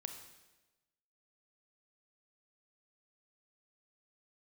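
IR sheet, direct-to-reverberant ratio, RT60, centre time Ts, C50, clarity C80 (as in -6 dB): 5.5 dB, 1.1 s, 23 ms, 7.0 dB, 9.0 dB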